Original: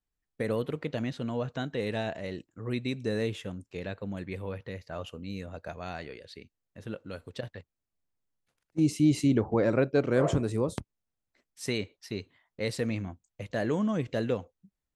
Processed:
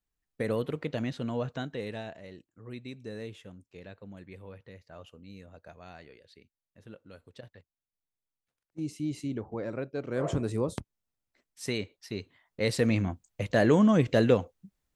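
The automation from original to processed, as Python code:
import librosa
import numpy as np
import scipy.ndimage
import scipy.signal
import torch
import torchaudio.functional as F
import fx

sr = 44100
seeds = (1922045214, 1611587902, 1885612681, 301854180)

y = fx.gain(x, sr, db=fx.line((1.47, 0.0), (2.24, -10.0), (9.98, -10.0), (10.45, -1.0), (12.1, -1.0), (13.07, 7.0)))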